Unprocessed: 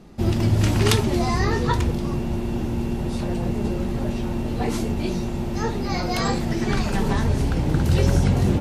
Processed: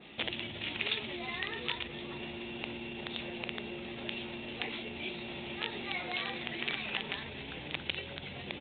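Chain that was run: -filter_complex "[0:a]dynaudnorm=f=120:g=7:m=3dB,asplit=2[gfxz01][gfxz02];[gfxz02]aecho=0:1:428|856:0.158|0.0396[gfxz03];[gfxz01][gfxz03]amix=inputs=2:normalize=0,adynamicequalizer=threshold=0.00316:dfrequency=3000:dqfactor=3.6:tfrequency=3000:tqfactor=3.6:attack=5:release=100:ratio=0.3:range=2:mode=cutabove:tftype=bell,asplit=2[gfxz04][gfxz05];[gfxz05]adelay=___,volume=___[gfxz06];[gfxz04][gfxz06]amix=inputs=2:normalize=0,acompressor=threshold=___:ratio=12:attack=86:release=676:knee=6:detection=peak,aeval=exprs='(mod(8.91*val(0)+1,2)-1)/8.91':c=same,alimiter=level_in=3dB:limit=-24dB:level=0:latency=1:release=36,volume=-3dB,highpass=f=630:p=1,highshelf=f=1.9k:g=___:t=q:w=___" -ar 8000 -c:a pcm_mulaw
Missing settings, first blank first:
14, -10dB, -27dB, 11.5, 1.5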